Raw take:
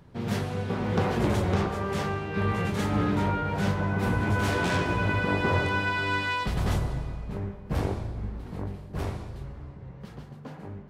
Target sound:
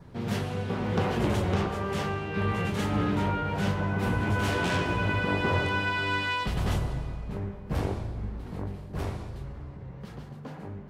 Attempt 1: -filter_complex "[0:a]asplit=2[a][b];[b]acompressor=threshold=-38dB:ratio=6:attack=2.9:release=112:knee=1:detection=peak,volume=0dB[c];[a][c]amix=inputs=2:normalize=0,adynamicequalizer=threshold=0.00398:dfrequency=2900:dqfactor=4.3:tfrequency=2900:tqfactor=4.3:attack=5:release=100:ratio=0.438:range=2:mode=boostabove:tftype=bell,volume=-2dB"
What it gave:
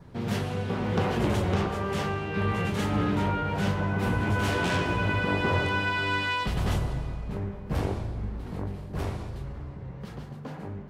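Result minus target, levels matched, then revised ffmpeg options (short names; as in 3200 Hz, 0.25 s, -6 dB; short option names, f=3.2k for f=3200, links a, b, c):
compressor: peak gain reduction -6.5 dB
-filter_complex "[0:a]asplit=2[a][b];[b]acompressor=threshold=-46dB:ratio=6:attack=2.9:release=112:knee=1:detection=peak,volume=0dB[c];[a][c]amix=inputs=2:normalize=0,adynamicequalizer=threshold=0.00398:dfrequency=2900:dqfactor=4.3:tfrequency=2900:tqfactor=4.3:attack=5:release=100:ratio=0.438:range=2:mode=boostabove:tftype=bell,volume=-2dB"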